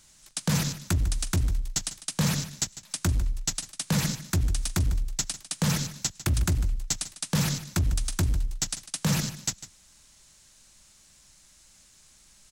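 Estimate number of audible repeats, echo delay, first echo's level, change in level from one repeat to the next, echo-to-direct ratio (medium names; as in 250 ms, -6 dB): 1, 150 ms, -14.5 dB, no regular repeats, -14.5 dB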